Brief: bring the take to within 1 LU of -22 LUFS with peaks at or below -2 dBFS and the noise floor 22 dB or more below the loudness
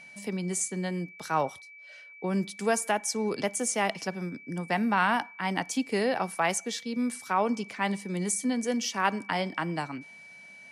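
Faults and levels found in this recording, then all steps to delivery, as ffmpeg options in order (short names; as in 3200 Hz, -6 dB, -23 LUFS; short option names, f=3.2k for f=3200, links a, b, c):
steady tone 2300 Hz; tone level -47 dBFS; loudness -29.5 LUFS; peak -13.5 dBFS; loudness target -22.0 LUFS
-> -af "bandreject=f=2.3k:w=30"
-af "volume=7.5dB"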